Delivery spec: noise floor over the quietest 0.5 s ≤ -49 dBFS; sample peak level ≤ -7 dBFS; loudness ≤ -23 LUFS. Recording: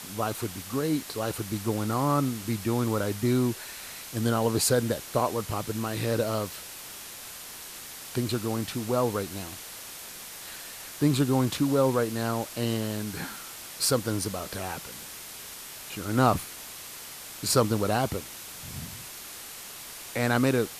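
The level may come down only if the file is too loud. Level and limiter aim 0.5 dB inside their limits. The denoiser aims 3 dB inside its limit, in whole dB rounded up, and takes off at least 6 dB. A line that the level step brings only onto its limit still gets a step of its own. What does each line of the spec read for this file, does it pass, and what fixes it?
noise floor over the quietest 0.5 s -42 dBFS: fail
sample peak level -8.5 dBFS: pass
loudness -29.5 LUFS: pass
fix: noise reduction 10 dB, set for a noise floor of -42 dBFS

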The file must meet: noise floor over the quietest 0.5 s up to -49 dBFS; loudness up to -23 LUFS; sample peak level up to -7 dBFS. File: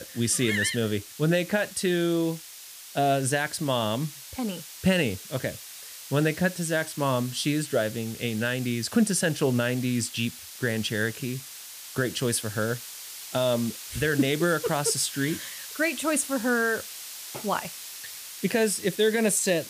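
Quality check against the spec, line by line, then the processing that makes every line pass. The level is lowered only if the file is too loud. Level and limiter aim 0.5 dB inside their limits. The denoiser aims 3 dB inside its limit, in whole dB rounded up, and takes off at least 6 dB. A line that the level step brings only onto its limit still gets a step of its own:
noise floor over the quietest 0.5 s -44 dBFS: fail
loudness -26.5 LUFS: pass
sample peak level -11.5 dBFS: pass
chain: noise reduction 8 dB, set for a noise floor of -44 dBFS

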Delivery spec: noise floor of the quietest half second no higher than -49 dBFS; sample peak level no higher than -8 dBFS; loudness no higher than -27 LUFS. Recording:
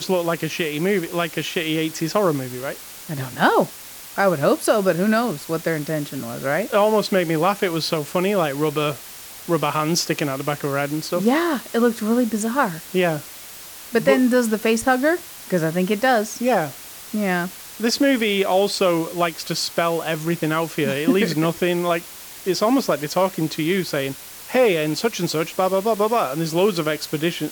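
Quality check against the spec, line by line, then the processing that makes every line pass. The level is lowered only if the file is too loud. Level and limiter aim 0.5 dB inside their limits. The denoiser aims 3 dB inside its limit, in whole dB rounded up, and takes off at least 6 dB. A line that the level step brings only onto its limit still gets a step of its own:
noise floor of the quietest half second -39 dBFS: fail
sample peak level -4.0 dBFS: fail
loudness -21.0 LUFS: fail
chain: noise reduction 7 dB, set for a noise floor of -39 dBFS; trim -6.5 dB

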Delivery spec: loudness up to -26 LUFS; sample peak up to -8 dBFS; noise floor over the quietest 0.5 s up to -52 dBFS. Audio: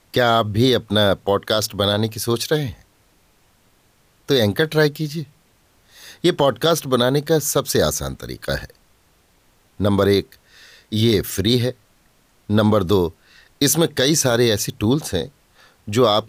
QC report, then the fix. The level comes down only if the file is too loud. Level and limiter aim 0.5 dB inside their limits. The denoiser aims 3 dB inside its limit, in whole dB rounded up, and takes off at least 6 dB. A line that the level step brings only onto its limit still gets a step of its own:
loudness -19.0 LUFS: fail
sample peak -5.5 dBFS: fail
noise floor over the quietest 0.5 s -58 dBFS: pass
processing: trim -7.5 dB

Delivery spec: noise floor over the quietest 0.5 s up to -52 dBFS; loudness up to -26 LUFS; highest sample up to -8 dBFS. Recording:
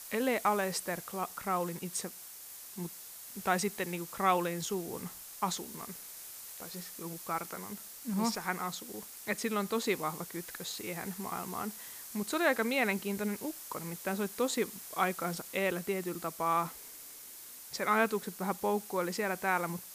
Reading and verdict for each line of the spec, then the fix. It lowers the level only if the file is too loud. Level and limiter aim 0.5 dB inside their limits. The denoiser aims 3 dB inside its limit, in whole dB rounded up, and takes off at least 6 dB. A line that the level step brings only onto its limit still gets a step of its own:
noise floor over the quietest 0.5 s -49 dBFS: fail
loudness -34.5 LUFS: pass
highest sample -14.0 dBFS: pass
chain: noise reduction 6 dB, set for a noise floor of -49 dBFS

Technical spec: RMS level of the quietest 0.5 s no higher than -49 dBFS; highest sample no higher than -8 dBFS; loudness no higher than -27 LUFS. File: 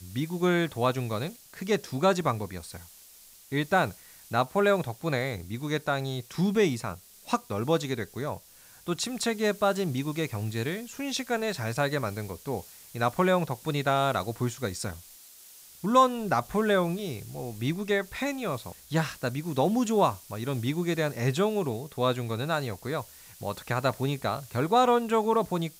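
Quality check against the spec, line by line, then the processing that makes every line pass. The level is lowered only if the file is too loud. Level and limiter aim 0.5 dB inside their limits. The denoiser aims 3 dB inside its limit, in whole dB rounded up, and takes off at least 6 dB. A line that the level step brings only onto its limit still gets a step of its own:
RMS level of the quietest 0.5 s -53 dBFS: pass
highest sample -9.0 dBFS: pass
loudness -28.5 LUFS: pass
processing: none needed

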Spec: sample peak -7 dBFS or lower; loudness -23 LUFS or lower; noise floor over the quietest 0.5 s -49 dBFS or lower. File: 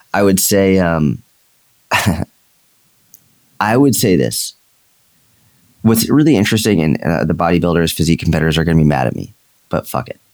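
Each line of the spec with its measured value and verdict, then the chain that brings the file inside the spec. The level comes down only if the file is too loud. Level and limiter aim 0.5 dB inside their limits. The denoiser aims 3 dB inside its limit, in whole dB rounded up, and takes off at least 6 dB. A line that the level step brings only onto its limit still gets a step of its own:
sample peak -1.5 dBFS: fail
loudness -14.0 LUFS: fail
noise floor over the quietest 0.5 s -56 dBFS: pass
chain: trim -9.5 dB

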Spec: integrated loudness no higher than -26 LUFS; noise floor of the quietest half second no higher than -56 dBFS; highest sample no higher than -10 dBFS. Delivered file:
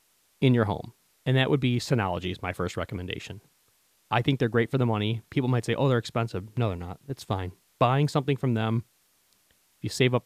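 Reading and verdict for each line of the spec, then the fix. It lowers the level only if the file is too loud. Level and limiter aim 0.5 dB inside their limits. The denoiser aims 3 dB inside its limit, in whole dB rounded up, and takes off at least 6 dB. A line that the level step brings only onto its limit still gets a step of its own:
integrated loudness -27.0 LUFS: pass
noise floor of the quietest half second -66 dBFS: pass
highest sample -7.5 dBFS: fail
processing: peak limiter -10.5 dBFS

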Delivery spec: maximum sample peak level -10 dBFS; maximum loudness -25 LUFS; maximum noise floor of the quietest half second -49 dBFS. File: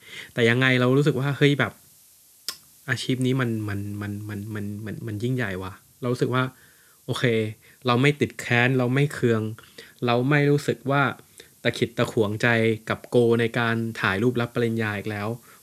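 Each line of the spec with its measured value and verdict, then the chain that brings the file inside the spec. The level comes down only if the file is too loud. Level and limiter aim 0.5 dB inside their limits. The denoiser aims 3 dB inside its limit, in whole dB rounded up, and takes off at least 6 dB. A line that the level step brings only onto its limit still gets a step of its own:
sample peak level -5.5 dBFS: fail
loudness -24.0 LUFS: fail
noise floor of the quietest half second -55 dBFS: pass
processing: trim -1.5 dB; peak limiter -10.5 dBFS

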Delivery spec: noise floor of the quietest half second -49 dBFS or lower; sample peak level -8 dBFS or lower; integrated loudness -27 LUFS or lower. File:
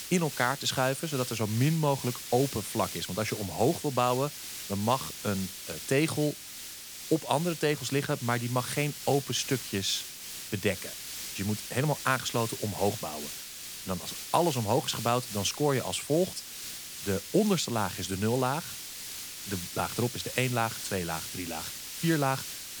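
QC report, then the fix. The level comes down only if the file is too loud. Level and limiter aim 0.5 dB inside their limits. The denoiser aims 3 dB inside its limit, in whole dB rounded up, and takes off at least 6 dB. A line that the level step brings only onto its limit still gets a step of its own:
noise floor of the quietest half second -43 dBFS: fail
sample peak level -10.0 dBFS: pass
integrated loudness -30.0 LUFS: pass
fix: noise reduction 9 dB, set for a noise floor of -43 dBFS

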